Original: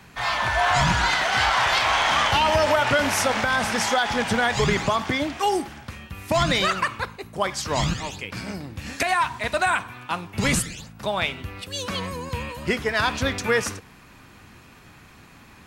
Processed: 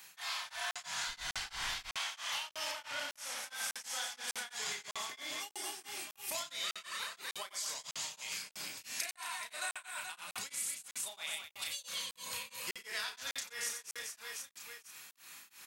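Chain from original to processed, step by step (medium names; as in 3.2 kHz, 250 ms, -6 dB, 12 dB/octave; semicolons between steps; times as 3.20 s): differentiator; doubling 32 ms -3 dB; reverse bouncing-ball echo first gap 90 ms, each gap 1.5×, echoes 5; compression 4:1, threshold -41 dBFS, peak gain reduction 17.5 dB; 1.07–1.95 s: added noise brown -53 dBFS; 2.71–3.43 s: treble shelf 9.5 kHz -10.5 dB; crackling interface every 0.60 s, samples 2048, zero, from 0.71 s; tremolo of two beating tones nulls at 3 Hz; trim +4 dB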